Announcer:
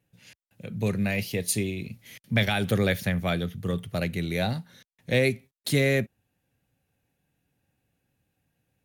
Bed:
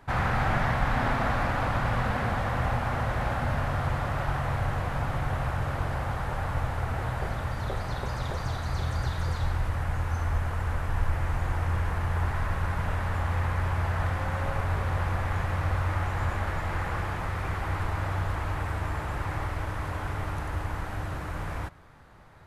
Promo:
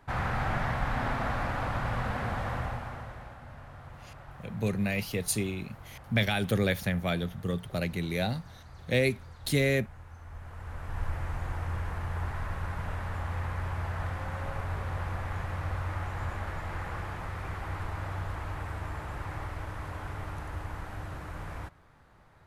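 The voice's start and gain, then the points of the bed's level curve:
3.80 s, -3.0 dB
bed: 2.53 s -4.5 dB
3.38 s -19 dB
10.21 s -19 dB
11.04 s -6 dB

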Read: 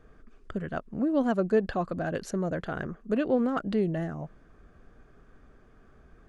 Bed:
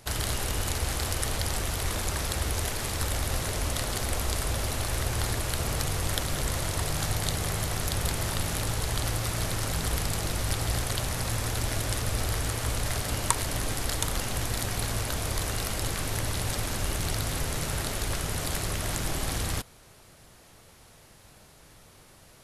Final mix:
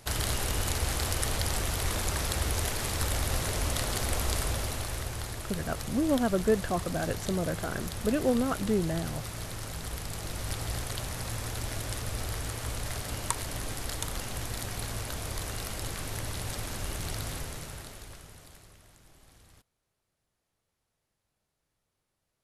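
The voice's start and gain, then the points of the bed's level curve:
4.95 s, -1.0 dB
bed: 4.39 s -0.5 dB
5.29 s -8.5 dB
10.02 s -8.5 dB
10.51 s -5.5 dB
17.3 s -5.5 dB
18.95 s -28 dB

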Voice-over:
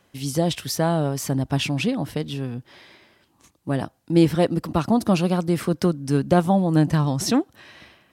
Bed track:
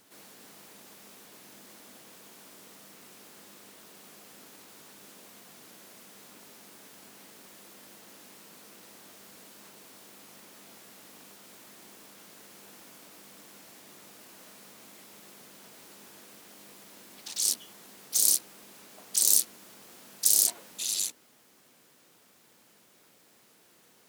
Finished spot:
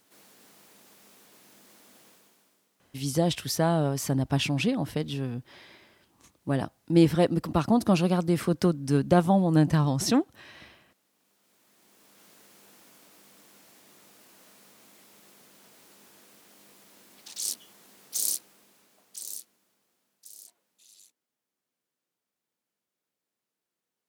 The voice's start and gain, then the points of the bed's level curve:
2.80 s, -3.0 dB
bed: 2.07 s -4.5 dB
2.72 s -21.5 dB
11.11 s -21.5 dB
12.25 s -4.5 dB
18.23 s -4.5 dB
20.21 s -26.5 dB

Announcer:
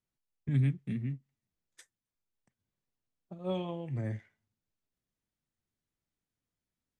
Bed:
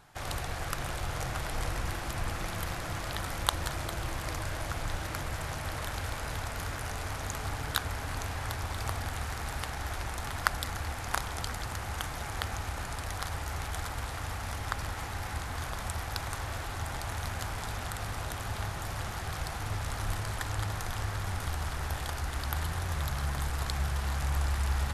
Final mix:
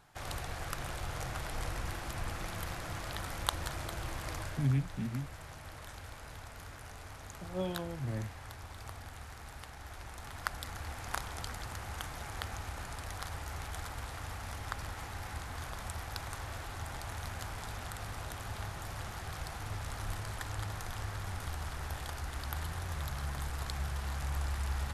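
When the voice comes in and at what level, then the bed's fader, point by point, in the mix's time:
4.10 s, -2.0 dB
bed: 4.42 s -4.5 dB
4.78 s -12 dB
9.8 s -12 dB
11.02 s -5.5 dB

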